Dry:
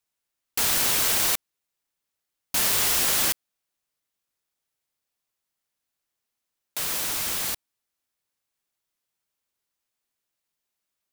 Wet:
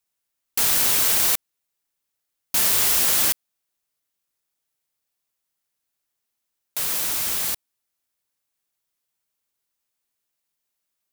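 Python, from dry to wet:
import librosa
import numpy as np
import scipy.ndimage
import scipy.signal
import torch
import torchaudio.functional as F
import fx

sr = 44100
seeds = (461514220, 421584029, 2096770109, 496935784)

y = fx.high_shelf(x, sr, hz=7700.0, db=5.0)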